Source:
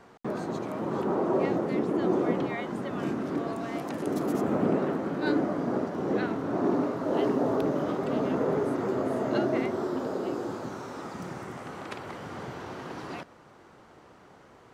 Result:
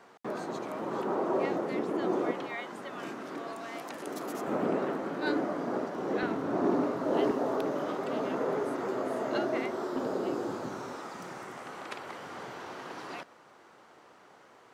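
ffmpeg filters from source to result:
-af "asetnsamples=n=441:p=0,asendcmd='2.31 highpass f 1000;4.47 highpass f 430;6.23 highpass f 200;7.31 highpass f 510;9.96 highpass f 150;10.96 highpass f 530',highpass=f=450:p=1"

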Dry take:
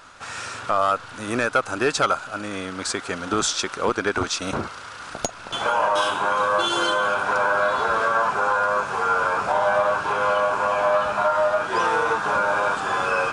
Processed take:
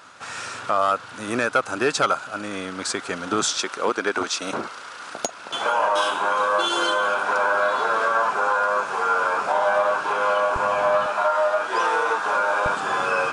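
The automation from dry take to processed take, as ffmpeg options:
-af "asetnsamples=n=441:p=0,asendcmd='3.57 highpass f 250;10.56 highpass f 85;11.06 highpass f 360;12.66 highpass f 140',highpass=120"

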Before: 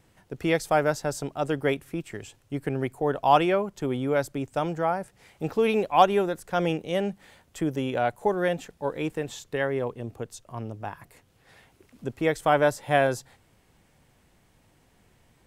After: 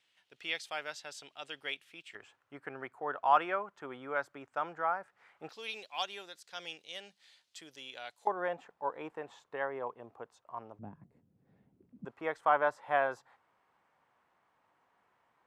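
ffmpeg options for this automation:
-af "asetnsamples=n=441:p=0,asendcmd='2.15 bandpass f 1300;5.49 bandpass f 4300;8.27 bandpass f 1000;10.79 bandpass f 200;12.05 bandpass f 1100',bandpass=f=3.2k:t=q:w=2.1:csg=0"

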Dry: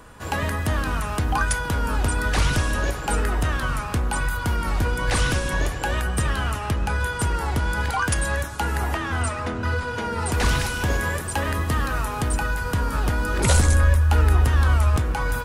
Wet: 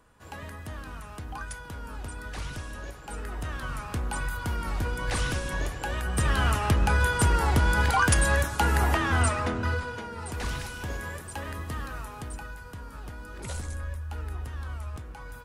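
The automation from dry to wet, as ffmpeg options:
-af "volume=1dB,afade=t=in:st=3.09:d=0.96:silence=0.375837,afade=t=in:st=6.01:d=0.46:silence=0.398107,afade=t=out:st=9.26:d=0.81:silence=0.237137,afade=t=out:st=11.81:d=0.93:silence=0.473151"

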